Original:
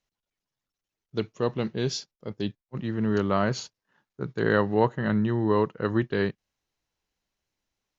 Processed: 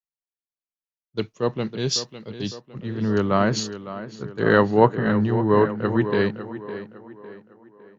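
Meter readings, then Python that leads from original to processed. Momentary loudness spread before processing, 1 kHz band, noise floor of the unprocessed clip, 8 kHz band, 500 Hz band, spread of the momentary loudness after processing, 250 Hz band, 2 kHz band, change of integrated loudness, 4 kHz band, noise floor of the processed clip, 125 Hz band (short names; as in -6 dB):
11 LU, +6.0 dB, under -85 dBFS, n/a, +5.5 dB, 16 LU, +4.0 dB, +5.0 dB, +5.0 dB, +7.5 dB, under -85 dBFS, +4.0 dB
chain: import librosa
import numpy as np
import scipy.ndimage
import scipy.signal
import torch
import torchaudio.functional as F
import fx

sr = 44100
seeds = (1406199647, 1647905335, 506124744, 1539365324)

p1 = x + fx.echo_tape(x, sr, ms=556, feedback_pct=64, wet_db=-7.0, lp_hz=3500.0, drive_db=7.0, wow_cents=8, dry=0)
p2 = fx.band_widen(p1, sr, depth_pct=70)
y = F.gain(torch.from_numpy(p2), 3.5).numpy()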